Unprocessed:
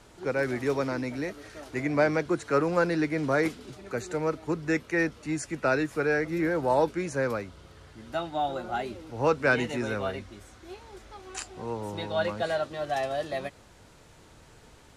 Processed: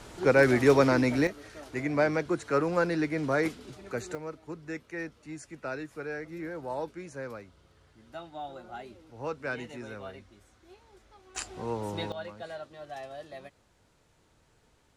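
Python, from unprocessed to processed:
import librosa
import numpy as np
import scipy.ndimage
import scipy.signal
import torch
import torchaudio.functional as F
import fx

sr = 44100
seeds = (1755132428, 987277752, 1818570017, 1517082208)

y = fx.gain(x, sr, db=fx.steps((0.0, 7.0), (1.27, -2.0), (4.15, -11.0), (11.36, 0.5), (12.12, -12.0)))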